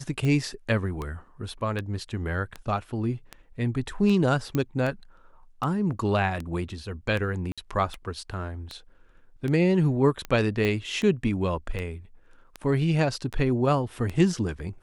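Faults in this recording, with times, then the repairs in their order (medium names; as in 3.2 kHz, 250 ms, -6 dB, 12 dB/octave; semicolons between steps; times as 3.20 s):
tick 78 rpm -19 dBFS
4.55 s: pop -14 dBFS
7.52–7.58 s: dropout 56 ms
10.65 s: pop -14 dBFS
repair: de-click; interpolate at 7.52 s, 56 ms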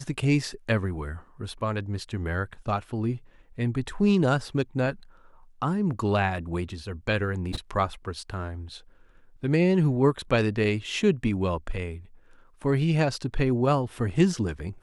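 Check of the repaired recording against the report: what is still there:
10.65 s: pop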